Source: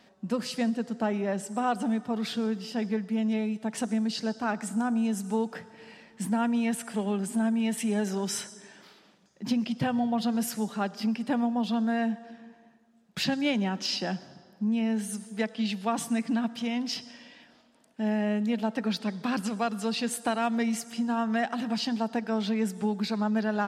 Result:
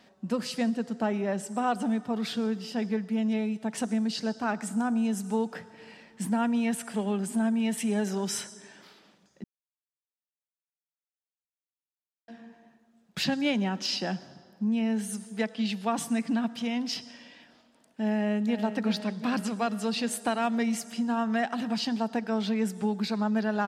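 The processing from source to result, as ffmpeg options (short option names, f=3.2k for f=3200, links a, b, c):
-filter_complex "[0:a]asplit=2[a][b];[b]afade=t=in:st=18.11:d=0.01,afade=t=out:st=18.63:d=0.01,aecho=0:1:370|740|1110|1480|1850|2220|2590|2960|3330|3700:0.316228|0.221359|0.154952|0.108466|0.0759263|0.0531484|0.0372039|0.0260427|0.0182299|0.0127609[c];[a][c]amix=inputs=2:normalize=0,asplit=3[d][e][f];[d]atrim=end=9.44,asetpts=PTS-STARTPTS,afade=t=out:st=9.436:d=0.004:c=hsin[g];[e]atrim=start=9.44:end=12.28,asetpts=PTS-STARTPTS,volume=0[h];[f]atrim=start=12.28,asetpts=PTS-STARTPTS,afade=t=in:d=0.004:c=hsin[i];[g][h][i]concat=n=3:v=0:a=1"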